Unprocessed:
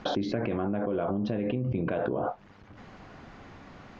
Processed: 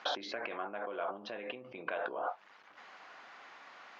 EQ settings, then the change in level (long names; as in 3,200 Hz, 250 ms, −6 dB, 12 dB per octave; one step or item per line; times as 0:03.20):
high-pass filter 950 Hz 12 dB per octave
high-frequency loss of the air 51 metres
+1.5 dB